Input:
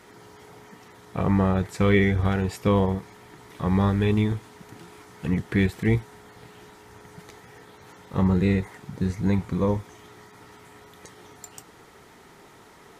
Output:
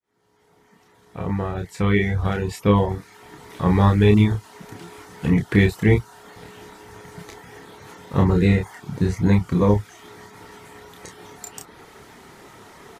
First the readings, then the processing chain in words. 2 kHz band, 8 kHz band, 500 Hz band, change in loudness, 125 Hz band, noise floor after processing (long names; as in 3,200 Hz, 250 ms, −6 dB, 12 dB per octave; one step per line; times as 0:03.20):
+3.5 dB, can't be measured, +3.5 dB, +4.0 dB, +5.0 dB, −58 dBFS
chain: fade in at the beginning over 3.78 s
reverb reduction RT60 0.54 s
double-tracking delay 29 ms −4.5 dB
level +5.5 dB